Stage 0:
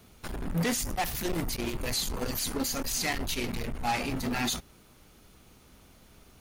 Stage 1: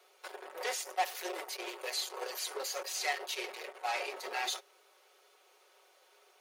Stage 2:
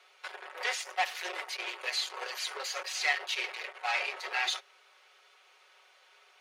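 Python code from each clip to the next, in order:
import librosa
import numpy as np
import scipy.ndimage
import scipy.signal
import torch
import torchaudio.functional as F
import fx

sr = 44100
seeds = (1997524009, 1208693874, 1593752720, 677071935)

y1 = scipy.signal.sosfilt(scipy.signal.cheby1(5, 1.0, 410.0, 'highpass', fs=sr, output='sos'), x)
y1 = fx.high_shelf(y1, sr, hz=7400.0, db=-10.0)
y1 = y1 + 0.54 * np.pad(y1, (int(5.4 * sr / 1000.0), 0))[:len(y1)]
y1 = y1 * librosa.db_to_amplitude(-3.0)
y2 = fx.bandpass_q(y1, sr, hz=2200.0, q=0.81)
y2 = y2 * librosa.db_to_amplitude(7.5)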